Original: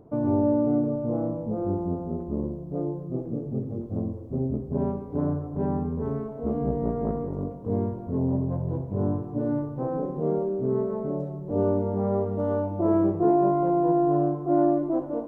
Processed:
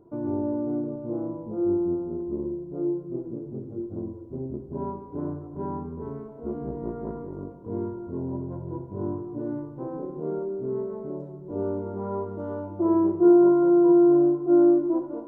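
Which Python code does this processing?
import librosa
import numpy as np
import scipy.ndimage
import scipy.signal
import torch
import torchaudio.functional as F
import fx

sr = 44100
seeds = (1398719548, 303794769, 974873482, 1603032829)

y = fx.small_body(x, sr, hz=(350.0, 980.0, 1400.0), ring_ms=95, db=15)
y = y * librosa.db_to_amplitude(-8.0)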